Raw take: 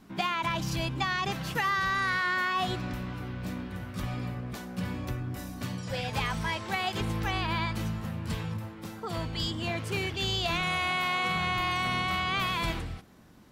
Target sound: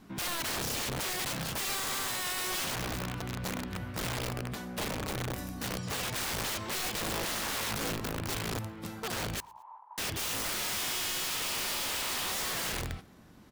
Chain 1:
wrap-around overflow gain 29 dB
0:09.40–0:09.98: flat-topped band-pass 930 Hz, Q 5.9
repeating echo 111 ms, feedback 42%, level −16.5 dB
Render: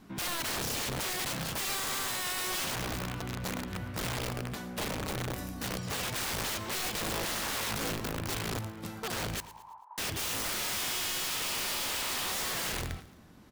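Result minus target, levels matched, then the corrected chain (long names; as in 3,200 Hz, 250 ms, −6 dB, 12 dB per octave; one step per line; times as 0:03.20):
echo-to-direct +10.5 dB
wrap-around overflow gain 29 dB
0:09.40–0:09.98: flat-topped band-pass 930 Hz, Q 5.9
repeating echo 111 ms, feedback 42%, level −27 dB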